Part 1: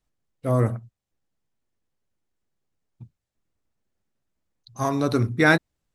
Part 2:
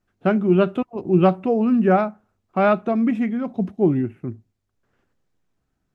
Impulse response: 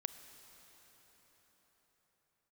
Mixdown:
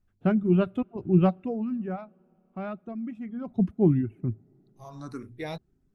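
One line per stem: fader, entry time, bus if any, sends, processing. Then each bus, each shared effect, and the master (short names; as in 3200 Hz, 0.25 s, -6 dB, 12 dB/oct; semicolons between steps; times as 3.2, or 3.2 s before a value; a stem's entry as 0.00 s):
-14.5 dB, 0.00 s, no send, endless phaser +1.5 Hz; auto duck -23 dB, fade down 0.80 s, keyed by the second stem
1.25 s -9.5 dB -> 1.88 s -20 dB -> 3.22 s -20 dB -> 3.53 s -7.5 dB, 0.00 s, send -21 dB, reverb removal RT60 0.68 s; tone controls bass +8 dB, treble 0 dB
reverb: on, pre-delay 28 ms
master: low shelf 98 Hz +8 dB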